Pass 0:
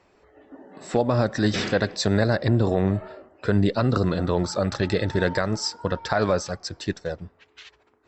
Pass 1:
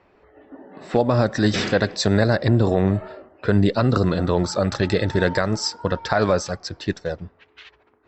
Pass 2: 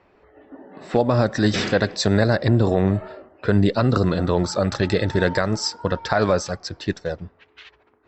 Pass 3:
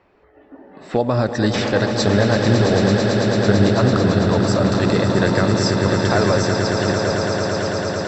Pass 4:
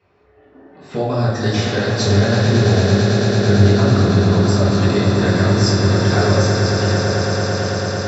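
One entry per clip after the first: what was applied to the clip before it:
low-pass opened by the level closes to 3000 Hz, open at -19.5 dBFS; gain +3 dB
nothing audible
swelling echo 0.111 s, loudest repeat 8, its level -9 dB
reverb RT60 1.1 s, pre-delay 3 ms, DRR -6.5 dB; gain -8 dB

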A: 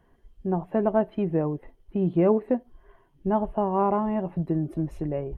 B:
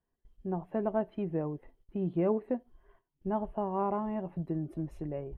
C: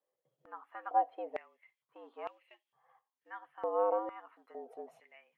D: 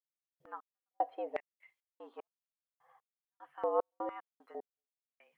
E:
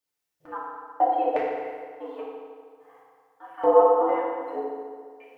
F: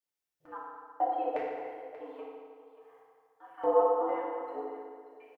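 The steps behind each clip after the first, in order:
gate -54 dBFS, range -15 dB; gain -8 dB
frequency shift +110 Hz; stepped high-pass 2.2 Hz 530–2700 Hz; gain -6 dB
step gate "..x..xx.x.x." 75 bpm -60 dB; gain +2 dB
FDN reverb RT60 1.9 s, low-frequency decay 0.9×, high-frequency decay 0.75×, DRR -7.5 dB; gain +5.5 dB
echo 0.584 s -15 dB; gain -8 dB

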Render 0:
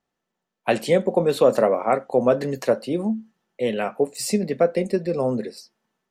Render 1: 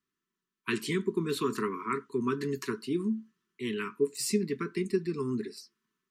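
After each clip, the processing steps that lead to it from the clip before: Chebyshev band-stop 430–980 Hz, order 5; low shelf 65 Hz -10.5 dB; gain -4.5 dB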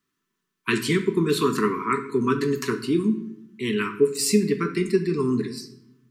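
shoebox room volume 210 m³, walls mixed, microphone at 0.42 m; gain +8 dB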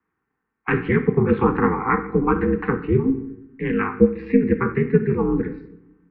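ring modulator 130 Hz; mistuned SSB -81 Hz 160–2200 Hz; gain +7.5 dB

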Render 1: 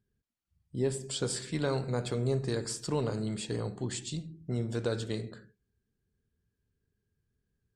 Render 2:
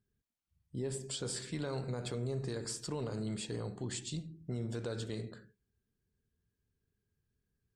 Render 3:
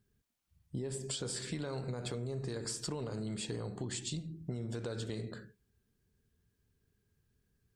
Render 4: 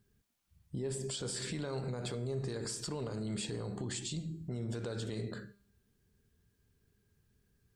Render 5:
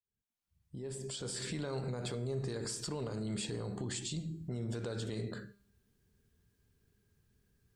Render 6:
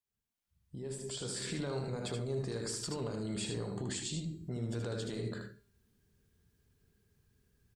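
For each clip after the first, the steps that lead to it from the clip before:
limiter -25.5 dBFS, peak gain reduction 7 dB; gain -3 dB
compressor, threshold -42 dBFS, peak gain reduction 9 dB; gain +6.5 dB
limiter -33 dBFS, peak gain reduction 7 dB; resonator 200 Hz, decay 0.63 s, harmonics all, mix 50%; gain +9 dB
opening faded in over 1.55 s
echo 77 ms -5.5 dB

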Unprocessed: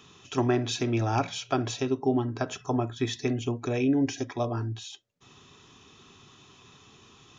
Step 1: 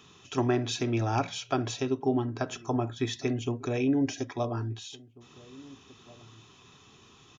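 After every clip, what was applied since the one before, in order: outdoor echo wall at 290 m, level -22 dB; gain -1.5 dB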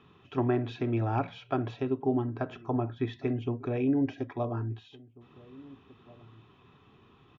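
air absorption 480 m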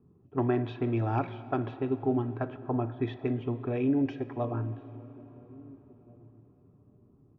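low-pass opened by the level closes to 340 Hz, open at -23.5 dBFS; on a send at -14 dB: reverb RT60 4.6 s, pre-delay 33 ms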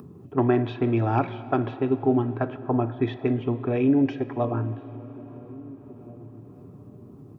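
HPF 94 Hz; upward compressor, threshold -41 dBFS; gain +6.5 dB

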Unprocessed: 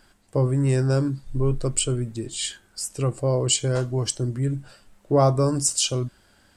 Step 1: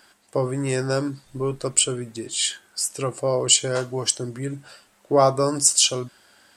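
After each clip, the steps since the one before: HPF 580 Hz 6 dB/oct; gain +5.5 dB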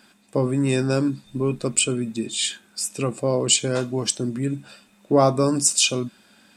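small resonant body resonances 210/2500/3600 Hz, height 15 dB, ringing for 40 ms; gain -2 dB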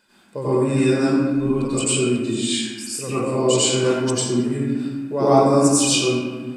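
reverb RT60 1.5 s, pre-delay 85 ms, DRR -12 dB; gain -9.5 dB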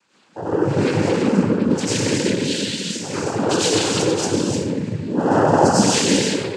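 non-linear reverb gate 0.4 s flat, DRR -2 dB; noise vocoder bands 8; gain -2.5 dB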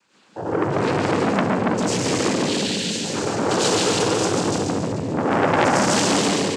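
feedback echo 0.142 s, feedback 55%, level -4 dB; core saturation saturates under 1900 Hz

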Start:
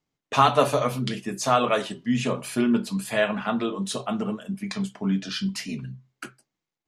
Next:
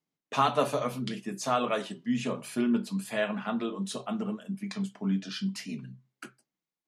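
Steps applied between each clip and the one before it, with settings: resonant low shelf 110 Hz -13.5 dB, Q 1.5; gain -7 dB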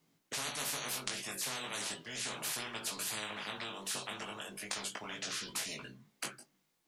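chorus 0.37 Hz, delay 18 ms, depth 2.4 ms; spectral compressor 10:1

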